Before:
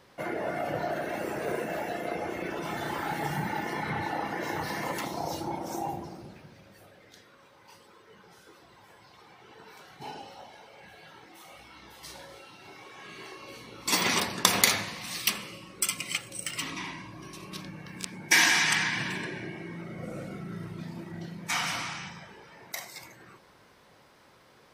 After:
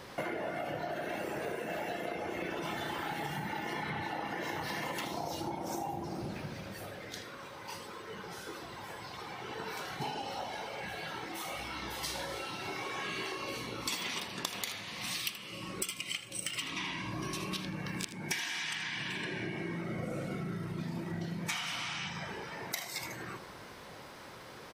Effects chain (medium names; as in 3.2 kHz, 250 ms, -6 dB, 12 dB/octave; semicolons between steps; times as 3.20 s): gain riding 2 s; dynamic bell 3.1 kHz, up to +7 dB, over -46 dBFS, Q 1.9; compression 16:1, threshold -39 dBFS, peak gain reduction 26 dB; delay 79 ms -13.5 dB; trim +5 dB